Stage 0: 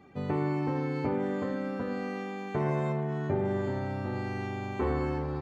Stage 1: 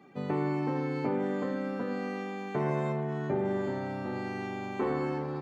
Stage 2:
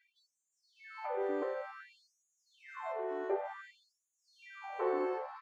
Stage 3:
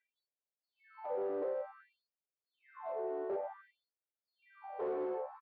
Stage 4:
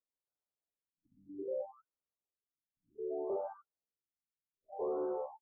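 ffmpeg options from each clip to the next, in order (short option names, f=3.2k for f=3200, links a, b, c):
-af "highpass=f=140:w=0.5412,highpass=f=140:w=1.3066"
-af "highshelf=f=2.5k:g=-12,afftfilt=real='re*gte(b*sr/1024,290*pow(6000/290,0.5+0.5*sin(2*PI*0.55*pts/sr)))':imag='im*gte(b*sr/1024,290*pow(6000/290,0.5+0.5*sin(2*PI*0.55*pts/sr)))':win_size=1024:overlap=0.75"
-af "aresample=11025,asoftclip=type=hard:threshold=-34dB,aresample=44100,bandpass=f=510:t=q:w=1.6:csg=0,volume=3dB"
-af "adynamicsmooth=sensitivity=4:basefreq=2.1k,afftfilt=real='re*lt(b*sr/1024,280*pow(1600/280,0.5+0.5*sin(2*PI*0.64*pts/sr)))':imag='im*lt(b*sr/1024,280*pow(1600/280,0.5+0.5*sin(2*PI*0.64*pts/sr)))':win_size=1024:overlap=0.75,volume=1dB"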